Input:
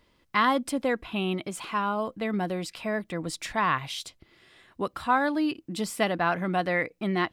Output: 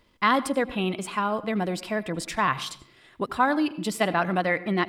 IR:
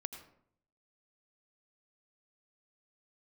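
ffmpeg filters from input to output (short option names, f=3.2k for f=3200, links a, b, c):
-filter_complex "[0:a]atempo=1.5,asplit=2[a][b];[1:a]atrim=start_sample=2205[c];[b][c]afir=irnorm=-1:irlink=0,volume=-2.5dB[d];[a][d]amix=inputs=2:normalize=0,volume=-1.5dB"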